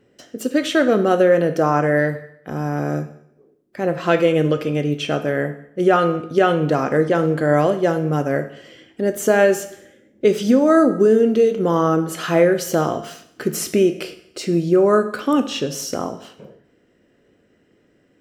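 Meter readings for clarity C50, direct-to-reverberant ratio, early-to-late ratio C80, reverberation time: 12.5 dB, 9.0 dB, 15.0 dB, 0.70 s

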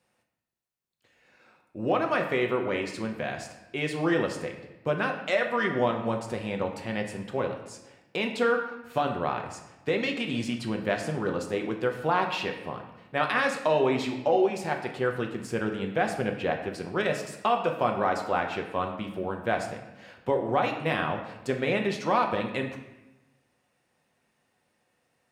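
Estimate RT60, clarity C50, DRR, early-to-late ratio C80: 1.0 s, 7.5 dB, 2.5 dB, 9.5 dB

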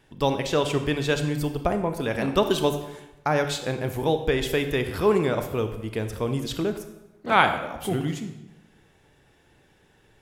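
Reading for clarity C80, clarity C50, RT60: 11.0 dB, 9.0 dB, 0.95 s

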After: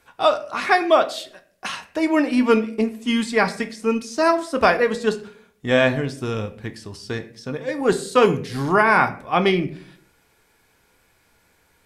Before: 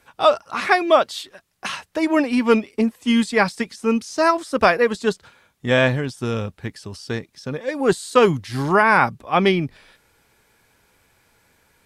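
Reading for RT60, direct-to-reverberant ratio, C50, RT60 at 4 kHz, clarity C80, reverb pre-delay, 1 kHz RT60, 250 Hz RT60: 0.55 s, 7.5 dB, 14.5 dB, 0.35 s, 18.0 dB, 3 ms, 0.40 s, 0.75 s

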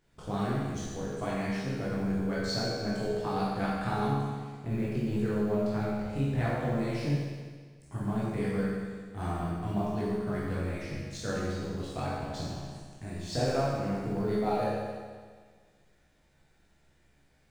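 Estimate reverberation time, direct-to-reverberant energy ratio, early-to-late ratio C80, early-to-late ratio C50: 1.6 s, −8.0 dB, 0.0 dB, −2.5 dB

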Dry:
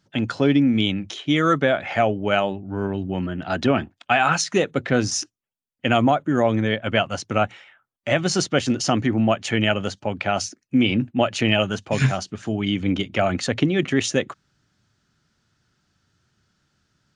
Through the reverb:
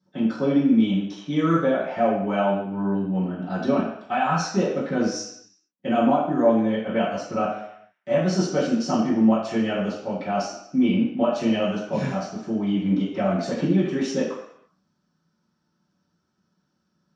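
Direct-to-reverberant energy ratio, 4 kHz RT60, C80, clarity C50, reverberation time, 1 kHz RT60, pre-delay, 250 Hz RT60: −14.0 dB, 0.70 s, 6.0 dB, 3.5 dB, 0.70 s, 0.75 s, 3 ms, 0.55 s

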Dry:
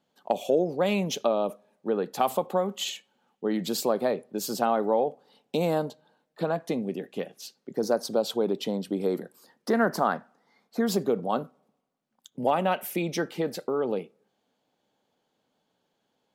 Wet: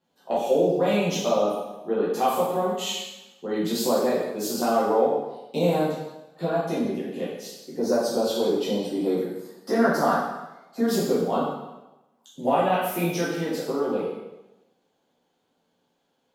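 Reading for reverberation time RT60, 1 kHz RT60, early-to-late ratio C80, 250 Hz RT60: 1.0 s, 1.0 s, 3.5 dB, 1.0 s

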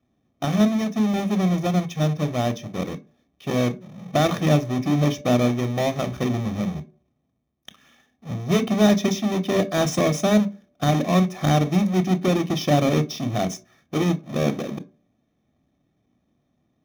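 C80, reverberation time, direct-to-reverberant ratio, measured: 23.5 dB, 0.55 s, 10.5 dB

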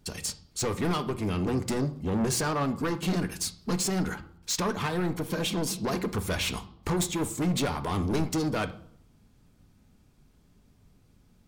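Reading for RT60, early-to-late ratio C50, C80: 0.65 s, 14.5 dB, 19.0 dB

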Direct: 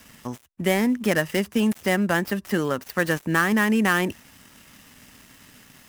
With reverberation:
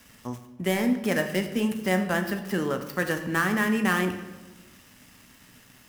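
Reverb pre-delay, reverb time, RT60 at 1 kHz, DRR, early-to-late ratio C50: 16 ms, 1.2 s, 1.1 s, 5.5 dB, 9.0 dB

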